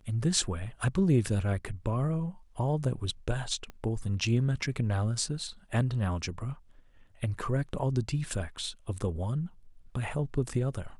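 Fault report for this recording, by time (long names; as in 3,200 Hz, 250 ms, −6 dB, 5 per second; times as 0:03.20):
0:03.70: click −29 dBFS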